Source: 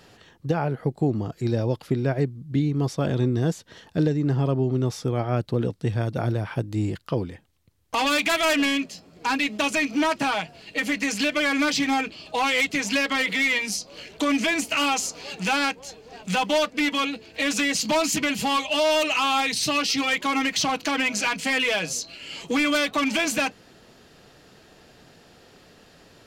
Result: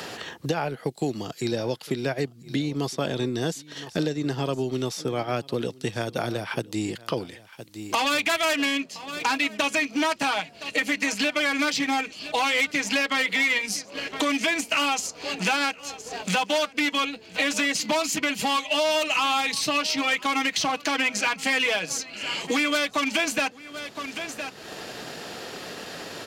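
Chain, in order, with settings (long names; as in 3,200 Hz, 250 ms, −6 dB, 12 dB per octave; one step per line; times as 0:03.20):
high-pass filter 330 Hz 6 dB per octave
single-tap delay 1,015 ms −20 dB
transient designer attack 0 dB, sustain −5 dB
multiband upward and downward compressor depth 70%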